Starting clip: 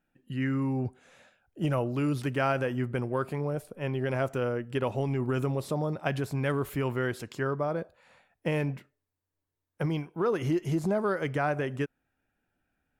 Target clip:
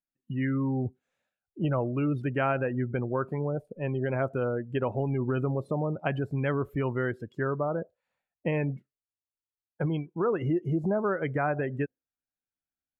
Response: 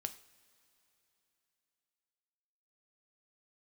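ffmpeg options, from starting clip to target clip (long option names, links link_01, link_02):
-filter_complex "[0:a]afftdn=noise_reduction=28:noise_floor=-37,asplit=2[link_01][link_02];[link_02]acompressor=threshold=-39dB:ratio=6,volume=-1.5dB[link_03];[link_01][link_03]amix=inputs=2:normalize=0,volume=-1dB"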